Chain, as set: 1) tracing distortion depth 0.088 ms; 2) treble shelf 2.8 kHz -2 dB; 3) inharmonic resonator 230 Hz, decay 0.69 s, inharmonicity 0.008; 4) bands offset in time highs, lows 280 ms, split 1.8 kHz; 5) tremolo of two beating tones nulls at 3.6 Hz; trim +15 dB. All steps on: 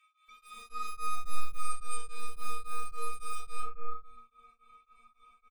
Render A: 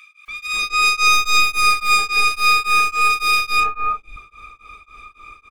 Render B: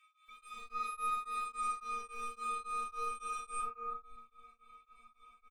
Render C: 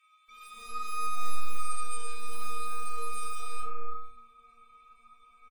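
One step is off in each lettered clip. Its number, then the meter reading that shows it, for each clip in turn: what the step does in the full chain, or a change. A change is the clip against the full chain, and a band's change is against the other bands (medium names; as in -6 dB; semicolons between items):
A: 3, 2 kHz band +13.5 dB; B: 1, crest factor change +3.0 dB; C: 5, momentary loudness spread change +1 LU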